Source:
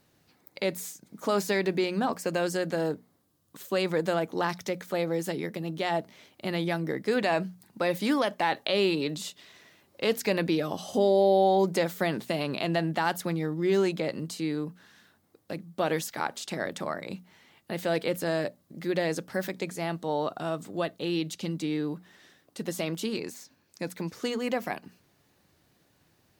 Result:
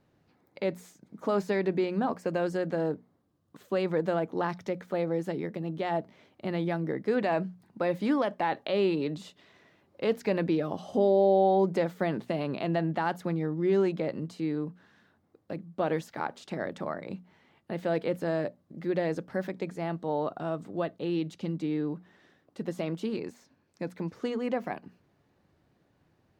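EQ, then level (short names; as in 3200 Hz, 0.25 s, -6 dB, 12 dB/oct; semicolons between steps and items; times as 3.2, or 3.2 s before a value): LPF 1200 Hz 6 dB/oct; 0.0 dB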